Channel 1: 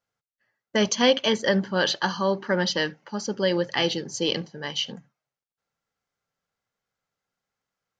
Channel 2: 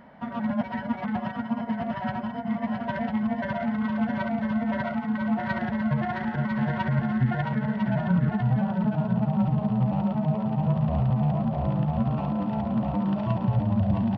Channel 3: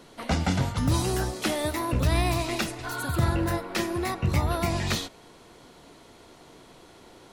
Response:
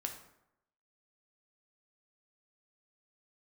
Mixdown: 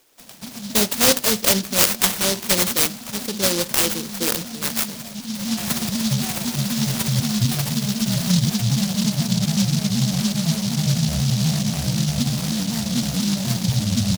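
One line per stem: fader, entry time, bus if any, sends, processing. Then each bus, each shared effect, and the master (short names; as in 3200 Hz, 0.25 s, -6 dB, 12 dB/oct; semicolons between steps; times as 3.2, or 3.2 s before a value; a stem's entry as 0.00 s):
0.0 dB, 0.00 s, no send, de-hum 122.8 Hz, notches 9
-3.0 dB, 0.20 s, no send, bell 170 Hz +7.5 dB 1.8 oct; shaped vibrato saw down 4 Hz, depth 160 cents; auto duck -10 dB, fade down 0.70 s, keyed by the first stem
-10.5 dB, 0.00 s, no send, HPF 430 Hz 12 dB/oct; compressor 3:1, threshold -39 dBFS, peak gain reduction 11 dB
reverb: off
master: bell 1700 Hz +11 dB 1.6 oct; noise-modulated delay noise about 4600 Hz, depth 0.29 ms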